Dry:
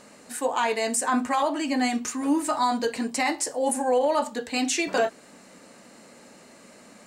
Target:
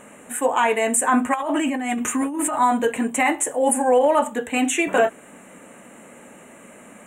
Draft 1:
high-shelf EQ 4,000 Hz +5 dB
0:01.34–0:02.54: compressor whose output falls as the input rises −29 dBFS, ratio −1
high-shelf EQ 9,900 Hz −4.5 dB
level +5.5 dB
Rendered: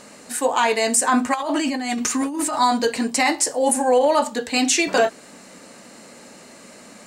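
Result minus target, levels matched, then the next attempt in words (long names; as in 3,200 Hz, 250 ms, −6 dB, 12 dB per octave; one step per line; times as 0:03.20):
4,000 Hz band +7.5 dB
Butterworth band-reject 4,800 Hz, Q 1
high-shelf EQ 4,000 Hz +5 dB
0:01.34–0:02.54: compressor whose output falls as the input rises −29 dBFS, ratio −1
high-shelf EQ 9,900 Hz −4.5 dB
level +5.5 dB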